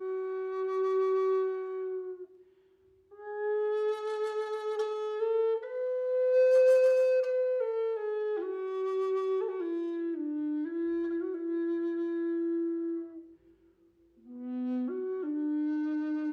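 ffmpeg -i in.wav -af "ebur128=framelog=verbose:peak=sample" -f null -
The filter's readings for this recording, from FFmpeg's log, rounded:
Integrated loudness:
  I:         -30.7 LUFS
  Threshold: -41.4 LUFS
Loudness range:
  LRA:         8.4 LU
  Threshold: -51.2 LUFS
  LRA low:   -35.6 LUFS
  LRA high:  -27.2 LUFS
Sample peak:
  Peak:      -16.7 dBFS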